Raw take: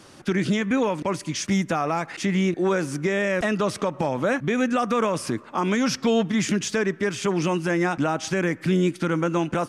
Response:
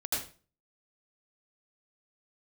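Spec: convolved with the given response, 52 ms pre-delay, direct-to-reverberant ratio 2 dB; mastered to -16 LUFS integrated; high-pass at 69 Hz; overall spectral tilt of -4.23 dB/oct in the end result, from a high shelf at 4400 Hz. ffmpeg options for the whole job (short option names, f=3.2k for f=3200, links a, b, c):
-filter_complex "[0:a]highpass=69,highshelf=f=4.4k:g=8.5,asplit=2[a][b];[1:a]atrim=start_sample=2205,adelay=52[c];[b][c]afir=irnorm=-1:irlink=0,volume=-7.5dB[d];[a][d]amix=inputs=2:normalize=0,volume=5.5dB"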